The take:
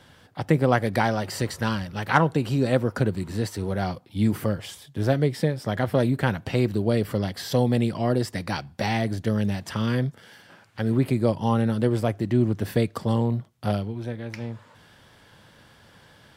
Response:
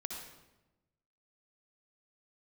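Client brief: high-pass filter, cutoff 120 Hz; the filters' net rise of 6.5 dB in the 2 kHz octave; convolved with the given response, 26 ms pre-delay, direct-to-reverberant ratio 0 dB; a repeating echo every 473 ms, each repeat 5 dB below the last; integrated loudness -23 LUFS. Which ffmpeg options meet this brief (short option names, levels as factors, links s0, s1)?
-filter_complex "[0:a]highpass=120,equalizer=f=2000:t=o:g=8.5,aecho=1:1:473|946|1419|1892|2365|2838|3311:0.562|0.315|0.176|0.0988|0.0553|0.031|0.0173,asplit=2[s0][s1];[1:a]atrim=start_sample=2205,adelay=26[s2];[s1][s2]afir=irnorm=-1:irlink=0,volume=1.06[s3];[s0][s3]amix=inputs=2:normalize=0,volume=0.708"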